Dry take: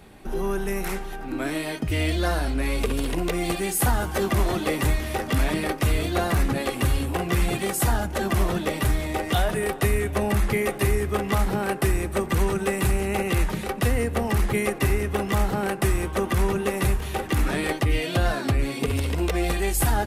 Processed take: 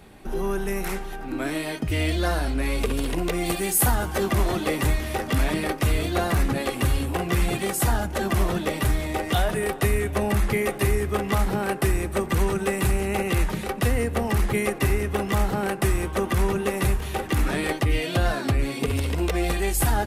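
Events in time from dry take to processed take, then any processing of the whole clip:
3.46–3.95 high shelf 10000 Hz +8.5 dB

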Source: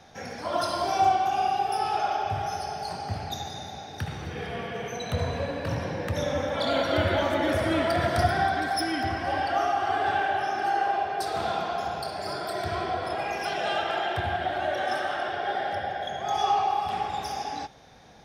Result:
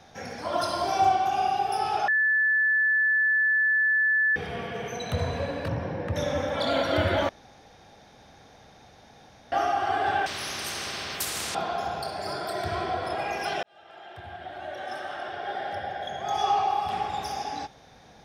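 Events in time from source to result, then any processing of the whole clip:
2.08–4.36 bleep 1740 Hz -19.5 dBFS
5.68–6.16 LPF 1500 Hz 6 dB/oct
7.29–9.52 room tone
10.26–11.55 spectral compressor 10:1
13.63–16.58 fade in

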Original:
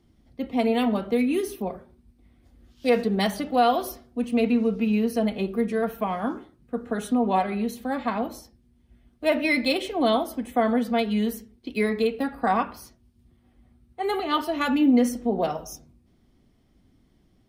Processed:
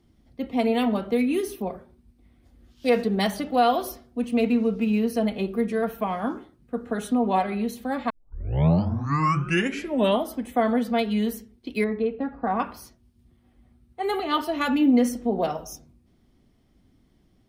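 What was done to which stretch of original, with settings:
4.4–4.99 median filter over 5 samples
8.1 tape start 2.23 s
11.84–12.6 tape spacing loss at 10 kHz 42 dB

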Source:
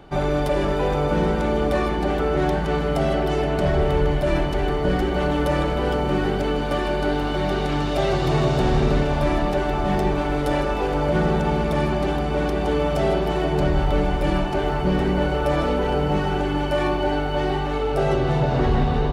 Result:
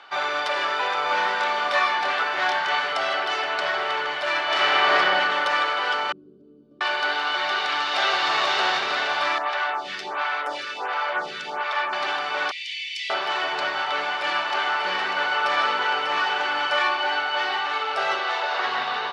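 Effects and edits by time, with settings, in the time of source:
1.03–2.93 doubler 26 ms -3 dB
4.43–4.97 reverb throw, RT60 2.4 s, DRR -8 dB
6.12–6.81 inverse Chebyshev low-pass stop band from 750 Hz, stop band 50 dB
7.44–8.29 echo throw 0.49 s, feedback 50%, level -4 dB
9.38–11.93 photocell phaser 1.4 Hz
12.51–13.1 steep high-pass 2000 Hz 96 dB/oct
13.86–16.8 echo 0.594 s -6.5 dB
18.19–18.65 HPF 330 Hz 24 dB/oct
whole clip: Chebyshev band-pass 1200–4800 Hz, order 2; gain +8.5 dB

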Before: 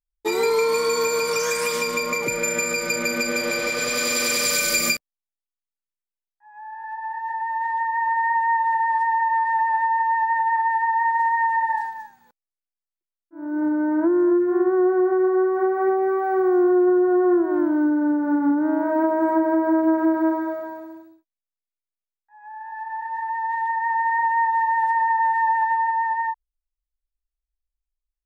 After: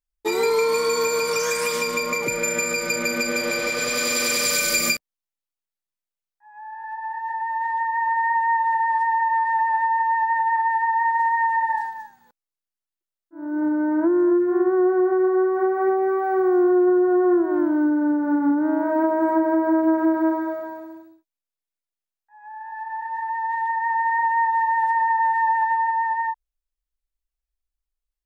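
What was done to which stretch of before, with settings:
11.72–13.79 notch 2400 Hz

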